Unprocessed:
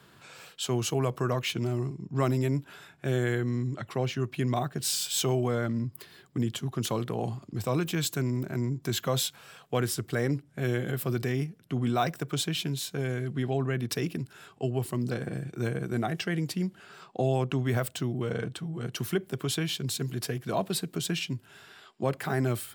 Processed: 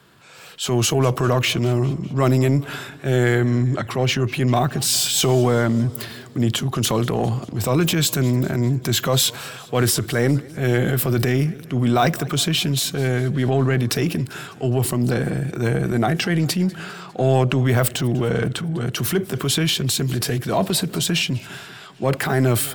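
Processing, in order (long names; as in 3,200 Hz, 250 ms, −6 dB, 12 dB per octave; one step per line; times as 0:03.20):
automatic gain control gain up to 8.5 dB
transient designer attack −5 dB, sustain +6 dB
in parallel at −7.5 dB: soft clipping −20 dBFS, distortion −11 dB
on the sum: feedback echo with a swinging delay time 201 ms, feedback 61%, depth 167 cents, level −21.5 dB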